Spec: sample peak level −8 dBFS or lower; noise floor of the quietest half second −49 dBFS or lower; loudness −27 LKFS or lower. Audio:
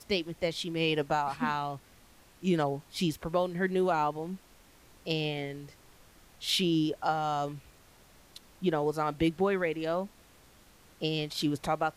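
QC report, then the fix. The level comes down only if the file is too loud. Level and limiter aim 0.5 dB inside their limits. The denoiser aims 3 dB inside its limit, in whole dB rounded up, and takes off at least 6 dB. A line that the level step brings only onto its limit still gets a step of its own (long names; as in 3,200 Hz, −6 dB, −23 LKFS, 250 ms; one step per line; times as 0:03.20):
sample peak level −16.0 dBFS: in spec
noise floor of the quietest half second −58 dBFS: in spec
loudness −31.0 LKFS: in spec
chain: no processing needed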